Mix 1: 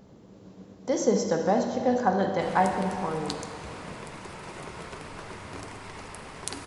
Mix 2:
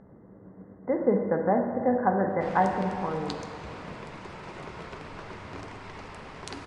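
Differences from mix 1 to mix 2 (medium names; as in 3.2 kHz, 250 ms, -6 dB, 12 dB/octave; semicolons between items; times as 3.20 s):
speech: add brick-wall FIR low-pass 2.1 kHz; master: add distance through air 110 m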